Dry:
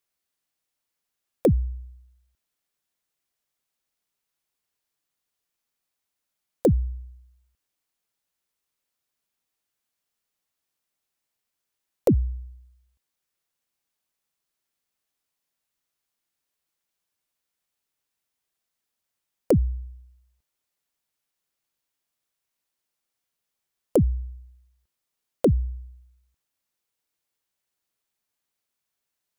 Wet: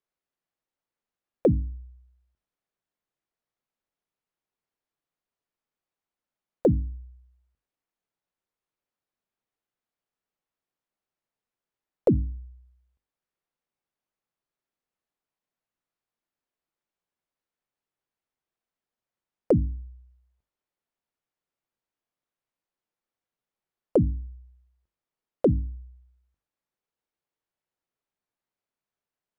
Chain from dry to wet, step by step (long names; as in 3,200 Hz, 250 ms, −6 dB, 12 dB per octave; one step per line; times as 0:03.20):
low-pass filter 1,100 Hz 6 dB per octave
parametric band 73 Hz −4 dB 0.92 octaves
mains-hum notches 50/100/150/200/250/300 Hz